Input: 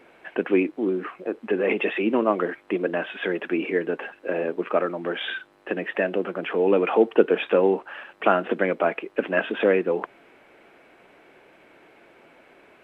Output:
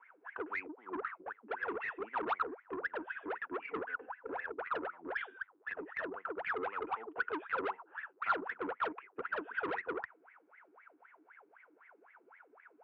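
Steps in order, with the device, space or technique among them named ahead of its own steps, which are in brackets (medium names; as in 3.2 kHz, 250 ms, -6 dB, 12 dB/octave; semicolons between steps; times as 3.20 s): 3.67–4.30 s: comb 4 ms, depth 88%; wah-wah guitar rig (wah-wah 3.9 Hz 300–2100 Hz, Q 21; valve stage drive 39 dB, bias 0.2; cabinet simulation 80–3400 Hz, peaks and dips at 120 Hz -7 dB, 330 Hz -8 dB, 590 Hz -8 dB, 1 kHz +5 dB, 1.4 kHz +8 dB); trim +7 dB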